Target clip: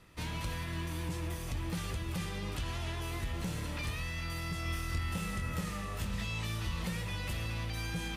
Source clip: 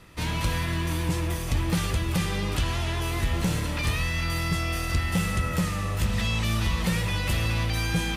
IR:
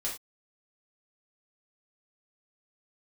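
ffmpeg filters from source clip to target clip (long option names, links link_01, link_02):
-filter_complex "[0:a]alimiter=limit=-20dB:level=0:latency=1:release=106,asettb=1/sr,asplit=3[link_01][link_02][link_03];[link_01]atrim=end=4.634[link_04];[link_02]atrim=start=4.63:end=6.84,asetpts=PTS-STARTPTS,afade=type=in:duration=0.004:curve=qsin,afade=type=out:start_time=2.206:duration=0.004:curve=qsin,asplit=2[link_05][link_06];[link_06]adelay=25,volume=-5.5dB[link_07];[link_05][link_07]amix=inputs=2:normalize=0,atrim=end_sample=97461[link_08];[link_03]atrim=start=6.836[link_09];[link_04][link_08]acrossfade=duration=0.004:curve1=hsin:curve2=qsin[link_10];[link_10][link_09]acrossfade=duration=0.004:curve1=qsin:curve2=hsin,volume=-8.5dB"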